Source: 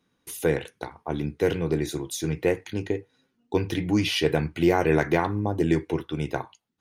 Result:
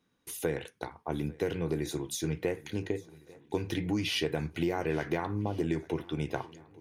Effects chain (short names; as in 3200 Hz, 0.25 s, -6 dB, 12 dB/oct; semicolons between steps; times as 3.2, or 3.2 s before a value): compressor, threshold -23 dBFS, peak gain reduction 8 dB; on a send: swung echo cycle 1.41 s, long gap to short 1.5:1, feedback 46%, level -23 dB; on the sum: gain -3.5 dB